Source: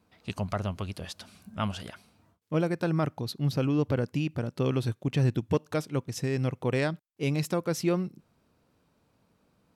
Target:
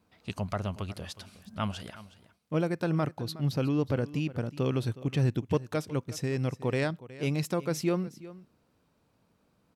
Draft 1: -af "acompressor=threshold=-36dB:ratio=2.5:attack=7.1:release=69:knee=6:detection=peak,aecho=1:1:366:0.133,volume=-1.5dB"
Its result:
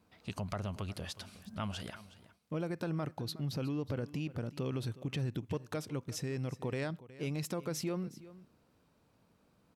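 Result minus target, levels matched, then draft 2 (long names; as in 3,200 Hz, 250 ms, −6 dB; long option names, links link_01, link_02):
downward compressor: peak gain reduction +10.5 dB
-af "aecho=1:1:366:0.133,volume=-1.5dB"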